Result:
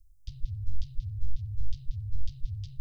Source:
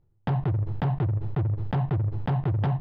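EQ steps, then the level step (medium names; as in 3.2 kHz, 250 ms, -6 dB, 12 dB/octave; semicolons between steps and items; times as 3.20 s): inverse Chebyshev band-stop 210–1500 Hz, stop band 70 dB; +13.5 dB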